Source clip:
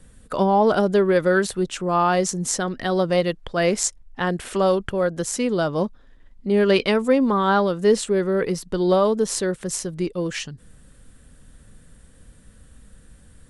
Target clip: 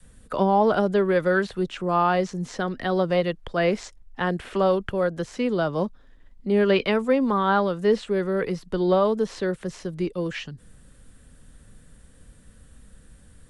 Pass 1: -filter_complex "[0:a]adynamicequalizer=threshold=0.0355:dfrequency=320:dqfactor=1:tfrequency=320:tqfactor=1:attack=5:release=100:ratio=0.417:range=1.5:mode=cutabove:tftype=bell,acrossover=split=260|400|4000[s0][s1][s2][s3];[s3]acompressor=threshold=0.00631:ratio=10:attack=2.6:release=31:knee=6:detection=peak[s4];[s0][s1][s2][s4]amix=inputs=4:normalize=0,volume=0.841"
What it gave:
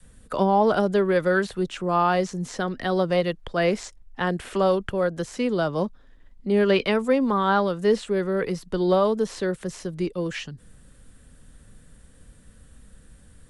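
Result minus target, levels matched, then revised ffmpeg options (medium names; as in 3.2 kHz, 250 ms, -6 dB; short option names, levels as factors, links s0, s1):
compression: peak gain reduction -9 dB
-filter_complex "[0:a]adynamicequalizer=threshold=0.0355:dfrequency=320:dqfactor=1:tfrequency=320:tqfactor=1:attack=5:release=100:ratio=0.417:range=1.5:mode=cutabove:tftype=bell,acrossover=split=260|400|4000[s0][s1][s2][s3];[s3]acompressor=threshold=0.002:ratio=10:attack=2.6:release=31:knee=6:detection=peak[s4];[s0][s1][s2][s4]amix=inputs=4:normalize=0,volume=0.841"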